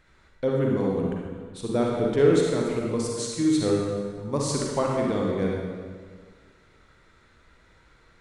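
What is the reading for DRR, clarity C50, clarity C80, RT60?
-2.0 dB, -1.0 dB, 1.5 dB, 1.8 s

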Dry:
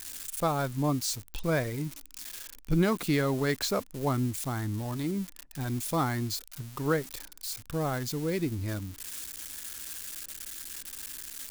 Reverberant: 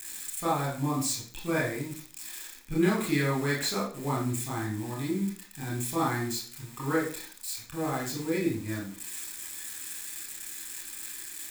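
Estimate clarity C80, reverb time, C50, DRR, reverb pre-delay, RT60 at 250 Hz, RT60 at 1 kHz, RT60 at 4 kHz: 10.0 dB, 0.50 s, 5.0 dB, -4.5 dB, 23 ms, 0.45 s, 0.50 s, 0.40 s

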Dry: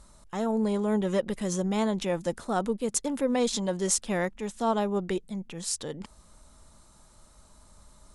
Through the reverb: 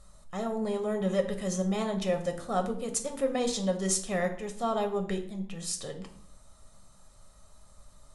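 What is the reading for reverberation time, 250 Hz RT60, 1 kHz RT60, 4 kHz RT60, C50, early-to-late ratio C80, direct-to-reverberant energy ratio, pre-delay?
0.60 s, 0.80 s, 0.55 s, 0.45 s, 10.5 dB, 14.0 dB, 4.0 dB, 5 ms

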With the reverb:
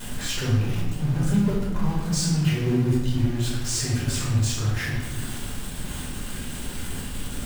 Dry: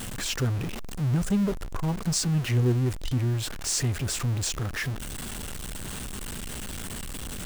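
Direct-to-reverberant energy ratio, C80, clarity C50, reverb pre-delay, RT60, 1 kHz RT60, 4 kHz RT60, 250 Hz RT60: -7.0 dB, 4.0 dB, 1.0 dB, 5 ms, 1.1 s, 0.85 s, 0.80 s, 1.9 s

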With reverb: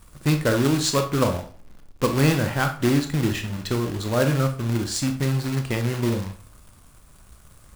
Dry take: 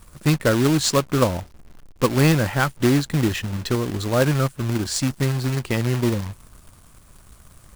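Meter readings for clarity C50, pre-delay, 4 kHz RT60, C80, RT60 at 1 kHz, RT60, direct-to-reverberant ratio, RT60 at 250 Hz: 10.0 dB, 22 ms, 0.35 s, 15.0 dB, 0.40 s, 0.45 s, 5.5 dB, 0.45 s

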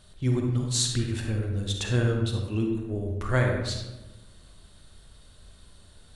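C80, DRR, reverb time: 4.5 dB, 1.0 dB, 1.1 s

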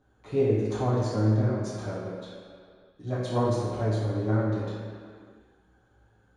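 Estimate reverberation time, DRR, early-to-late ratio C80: not exponential, -11.0 dB, 1.0 dB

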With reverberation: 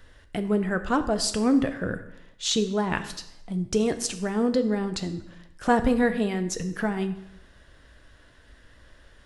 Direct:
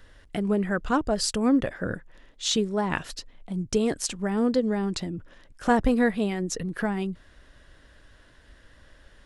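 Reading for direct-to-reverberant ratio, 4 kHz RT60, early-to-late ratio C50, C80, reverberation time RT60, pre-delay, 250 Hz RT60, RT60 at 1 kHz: 8.5 dB, 0.75 s, 12.5 dB, 14.5 dB, 0.85 s, 3 ms, 0.85 s, 0.85 s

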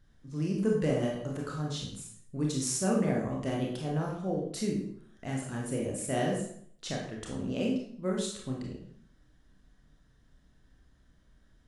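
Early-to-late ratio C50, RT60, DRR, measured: 3.0 dB, 0.60 s, -2.0 dB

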